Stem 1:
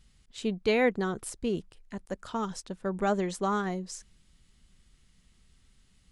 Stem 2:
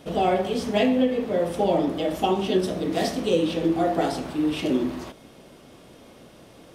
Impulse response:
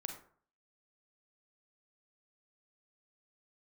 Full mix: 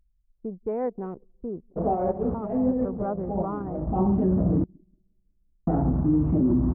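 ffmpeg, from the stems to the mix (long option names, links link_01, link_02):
-filter_complex "[0:a]acrossover=split=410[link_01][link_02];[link_01]acompressor=threshold=-30dB:ratio=6[link_03];[link_03][link_02]amix=inputs=2:normalize=0,volume=-2dB,asplit=3[link_04][link_05][link_06];[link_05]volume=-19.5dB[link_07];[1:a]asubboost=boost=11.5:cutoff=150,alimiter=limit=-17.5dB:level=0:latency=1:release=31,adelay=1700,volume=2.5dB,asplit=3[link_08][link_09][link_10];[link_08]atrim=end=4.64,asetpts=PTS-STARTPTS,afade=type=out:start_time=4.636:duration=0.004:curve=hsin[link_11];[link_09]atrim=start=4.64:end=5.67,asetpts=PTS-STARTPTS,volume=0[link_12];[link_10]atrim=start=5.67,asetpts=PTS-STARTPTS,afade=type=in:duration=0.004:curve=hsin[link_13];[link_11][link_12][link_13]concat=n=3:v=0:a=1,asplit=2[link_14][link_15];[link_15]volume=-24dB[link_16];[link_06]apad=whole_len=372299[link_17];[link_14][link_17]sidechaincompress=threshold=-39dB:ratio=20:attack=16:release=192[link_18];[link_07][link_16]amix=inputs=2:normalize=0,aecho=0:1:181|362|543|724|905|1086|1267|1448|1629:1|0.57|0.325|0.185|0.106|0.0602|0.0343|0.0195|0.0111[link_19];[link_04][link_18][link_19]amix=inputs=3:normalize=0,lowpass=frequency=1100:width=0.5412,lowpass=frequency=1100:width=1.3066,aemphasis=mode=reproduction:type=50fm,anlmdn=6.31"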